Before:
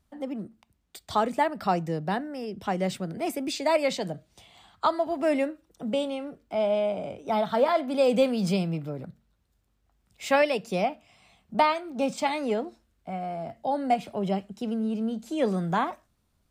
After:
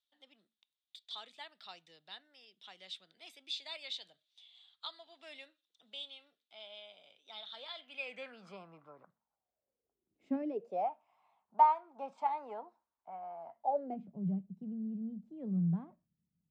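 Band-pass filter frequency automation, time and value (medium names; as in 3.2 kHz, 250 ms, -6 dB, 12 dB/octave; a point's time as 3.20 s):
band-pass filter, Q 6.2
7.75 s 3.6 kHz
8.56 s 1.1 kHz
9.07 s 1.1 kHz
10.40 s 240 Hz
10.89 s 940 Hz
13.62 s 940 Hz
14.11 s 170 Hz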